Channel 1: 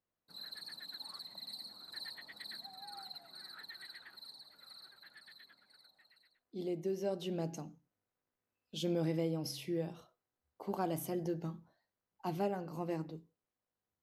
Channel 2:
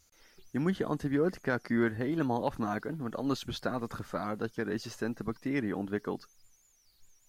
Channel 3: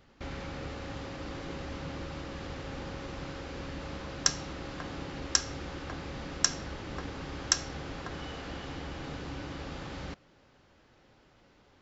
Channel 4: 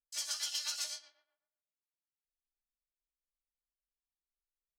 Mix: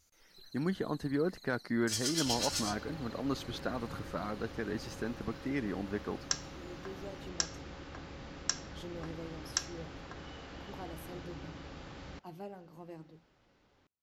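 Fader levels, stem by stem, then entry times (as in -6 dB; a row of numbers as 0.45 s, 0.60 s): -10.0 dB, -3.5 dB, -7.0 dB, +2.5 dB; 0.00 s, 0.00 s, 2.05 s, 1.75 s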